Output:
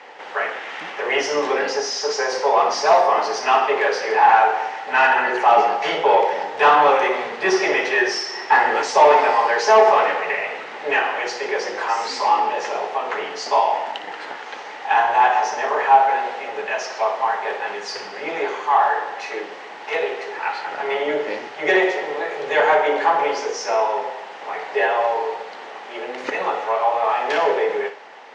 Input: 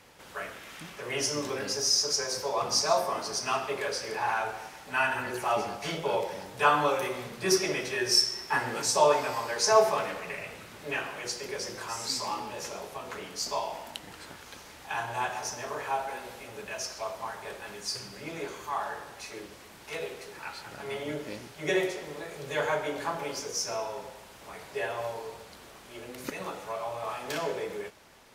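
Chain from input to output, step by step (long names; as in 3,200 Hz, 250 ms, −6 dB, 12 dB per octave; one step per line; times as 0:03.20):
mid-hump overdrive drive 20 dB, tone 1,200 Hz, clips at −8 dBFS
loudspeaker in its box 280–6,800 Hz, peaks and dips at 450 Hz +5 dB, 810 Hz +9 dB, 1,900 Hz +7 dB, 2,900 Hz +4 dB
on a send: flutter between parallel walls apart 10.1 metres, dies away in 0.29 s
on the sum: level +2 dB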